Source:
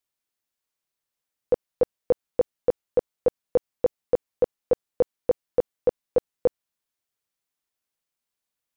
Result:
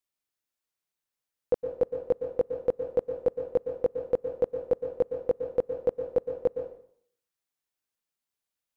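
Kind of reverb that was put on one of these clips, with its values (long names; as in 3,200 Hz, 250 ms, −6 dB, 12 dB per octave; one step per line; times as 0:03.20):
dense smooth reverb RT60 0.6 s, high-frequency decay 0.9×, pre-delay 105 ms, DRR 7 dB
level −4 dB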